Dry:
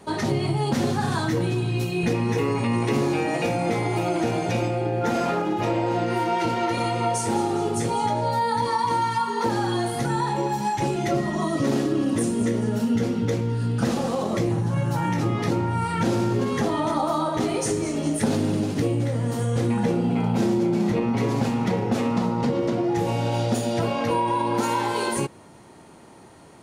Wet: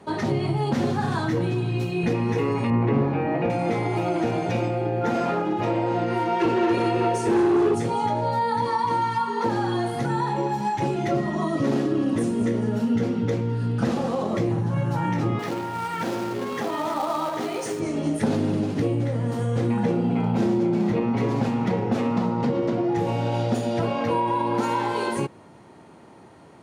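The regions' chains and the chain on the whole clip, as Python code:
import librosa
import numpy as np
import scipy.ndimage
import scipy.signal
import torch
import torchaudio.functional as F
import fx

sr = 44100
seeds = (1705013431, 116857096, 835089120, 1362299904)

y = fx.chain(x, sr, fx.lowpass(hz=2000.0, slope=12),
    fx.low_shelf(hz=230.0, db=6.0),
    fx.hum_notches(base_hz=50, count=10), at=(2.7, 3.5))
y = fx.chain(y, sr, fx.small_body(hz=(380.0, 1700.0, 2600.0), ring_ms=40, db=13),
    fx.clip_hard(threshold_db=-16.0), at=(6.4, 7.75))
y = fx.chain(y, sr, fx.highpass(hz=480.0, slope=6),
    fx.quant_companded(bits=4), at=(15.39, 17.8))
y = scipy.signal.sosfilt(scipy.signal.butter(2, 74.0, 'highpass', fs=sr, output='sos'), y)
y = fx.high_shelf(y, sr, hz=5100.0, db=-12.0)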